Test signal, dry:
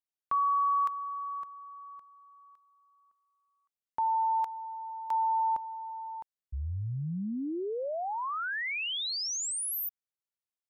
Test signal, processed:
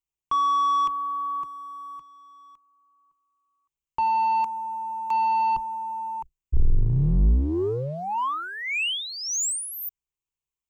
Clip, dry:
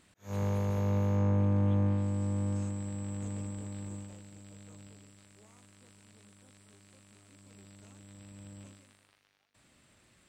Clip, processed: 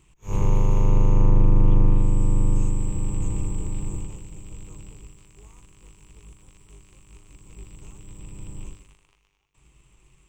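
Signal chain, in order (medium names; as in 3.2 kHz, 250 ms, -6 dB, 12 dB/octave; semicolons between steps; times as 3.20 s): octave divider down 2 oct, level +2 dB; rippled EQ curve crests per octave 0.71, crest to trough 12 dB; waveshaping leveller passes 1; bass shelf 120 Hz +10 dB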